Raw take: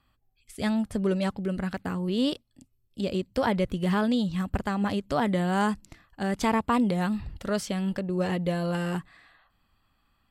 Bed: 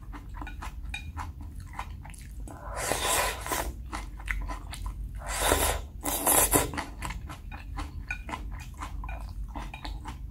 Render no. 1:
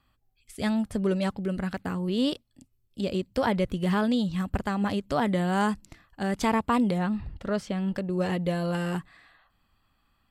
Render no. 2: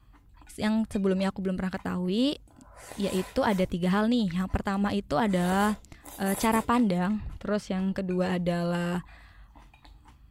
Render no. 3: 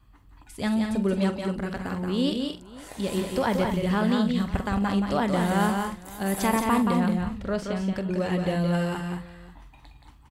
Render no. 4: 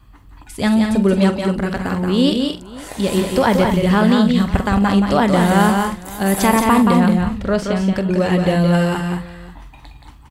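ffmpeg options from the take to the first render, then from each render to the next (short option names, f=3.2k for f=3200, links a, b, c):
-filter_complex "[0:a]asettb=1/sr,asplit=3[a][b][c];[a]atrim=end=6.984[d];[b]atrim=start=6.98:end=7.95,asetpts=PTS-STARTPTS,afade=t=in:d=0.004:c=qsin,afade=t=out:st=0.966:d=0.004:c=qsin,lowpass=f=2.3k:p=1[e];[c]atrim=start=7.946[f];[d][e]acrossfade=d=0.004:c1=hsin:c2=qsin[g];[g][f]acrossfade=d=0.004:c1=qsin:c2=hsin"
-filter_complex "[1:a]volume=-15dB[a];[0:a][a]amix=inputs=2:normalize=0"
-filter_complex "[0:a]asplit=2[a][b];[b]adelay=46,volume=-13dB[c];[a][c]amix=inputs=2:normalize=0,asplit=2[d][e];[e]aecho=0:1:175|220|540:0.562|0.316|0.1[f];[d][f]amix=inputs=2:normalize=0"
-af "volume=10dB,alimiter=limit=-3dB:level=0:latency=1"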